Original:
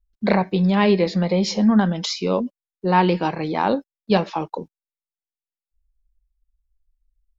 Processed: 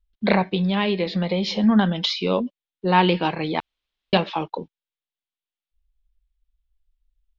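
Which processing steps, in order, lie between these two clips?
3.60–4.13 s: room tone; resonant low-pass 3.4 kHz, resonance Q 2.8; 0.50–1.64 s: compression 4:1, threshold -18 dBFS, peak gain reduction 6 dB; trim -1 dB

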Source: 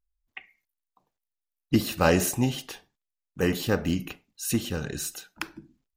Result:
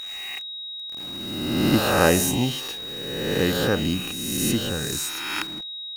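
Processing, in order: reverse spectral sustain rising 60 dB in 1.49 s; bit crusher 7-bit; whistle 3.8 kHz -32 dBFS

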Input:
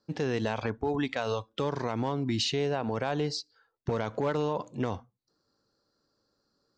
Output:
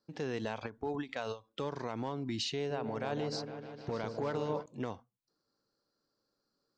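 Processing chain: peaking EQ 66 Hz -7.5 dB 1.3 oct; 2.55–4.66 s: delay with an opening low-pass 153 ms, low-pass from 750 Hz, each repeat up 1 oct, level -6 dB; endings held to a fixed fall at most 250 dB/s; trim -6.5 dB

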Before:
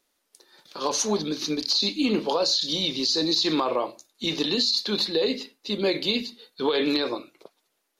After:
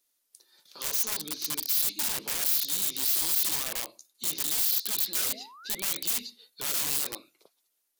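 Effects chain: integer overflow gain 21.5 dB; painted sound rise, 5.14–6.00 s, 350–4000 Hz -38 dBFS; pre-emphasis filter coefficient 0.8

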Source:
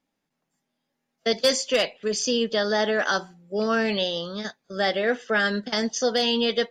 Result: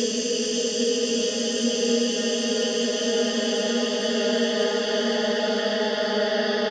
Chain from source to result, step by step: Paulstretch 15×, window 1.00 s, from 2.20 s; doubling 17 ms -13.5 dB

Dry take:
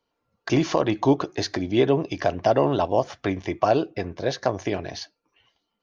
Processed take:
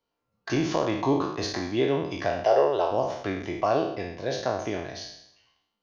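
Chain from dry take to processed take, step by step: spectral sustain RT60 0.77 s; 2.44–2.91 s: resonant low shelf 330 Hz -9 dB, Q 3; trim -6.5 dB

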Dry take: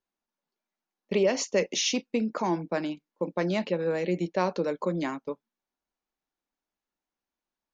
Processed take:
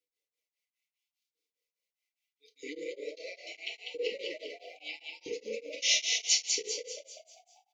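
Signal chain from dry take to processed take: reverse the whole clip; high-pass 310 Hz 12 dB/octave; peaking EQ 590 Hz +13.5 dB 1.2 oct; transient shaper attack -10 dB, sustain +8 dB; compression, threshold -24 dBFS, peak gain reduction 13 dB; LFO high-pass saw up 0.76 Hz 580–4600 Hz; brick-wall FIR band-stop 500–1900 Hz; on a send: frequency-shifting echo 196 ms, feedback 47%, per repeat +71 Hz, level -4 dB; on the sum: FDN reverb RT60 0.62 s, low-frequency decay 0.75×, high-frequency decay 0.75×, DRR -0.5 dB; tremolo of two beating tones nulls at 4.9 Hz

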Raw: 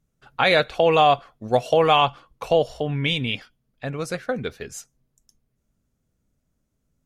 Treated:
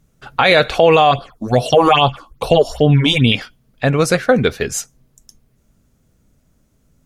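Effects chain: 1.11–3.32 s: phase shifter stages 6, 2.4 Hz, lowest notch 120–2100 Hz; loudness maximiser +15.5 dB; trim -1 dB

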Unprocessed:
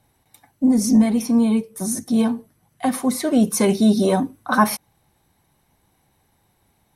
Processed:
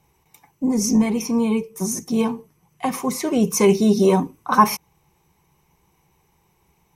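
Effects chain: rippled EQ curve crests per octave 0.76, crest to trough 10 dB

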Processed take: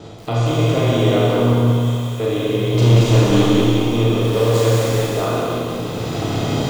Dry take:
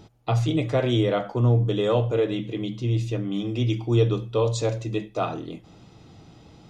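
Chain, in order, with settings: spectral levelling over time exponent 0.6; recorder AGC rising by 16 dB/s; gate with hold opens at -28 dBFS; 1.53–2.20 s: pre-emphasis filter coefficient 0.97; 2.74–3.46 s: waveshaping leveller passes 3; 4.21–5.14 s: small samples zeroed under -24.5 dBFS; Schroeder reverb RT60 1.5 s, combs from 26 ms, DRR -4.5 dB; bit-crushed delay 184 ms, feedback 55%, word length 6-bit, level -3 dB; trim -3.5 dB

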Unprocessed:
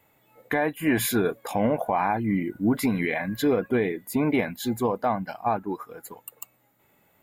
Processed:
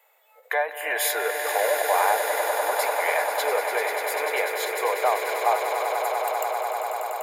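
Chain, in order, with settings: steep high-pass 480 Hz 48 dB/octave; on a send: echo with a slow build-up 98 ms, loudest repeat 8, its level -10 dB; on the sum: endings held to a fixed fall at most 180 dB/s; trim +2.5 dB

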